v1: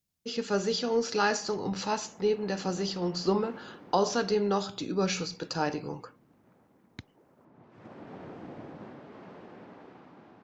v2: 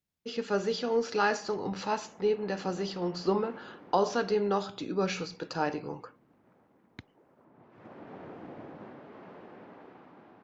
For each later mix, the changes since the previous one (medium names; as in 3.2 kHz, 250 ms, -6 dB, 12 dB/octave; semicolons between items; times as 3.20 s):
master: add tone controls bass -4 dB, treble -9 dB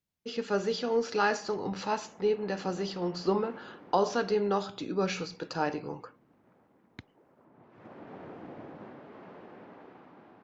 no change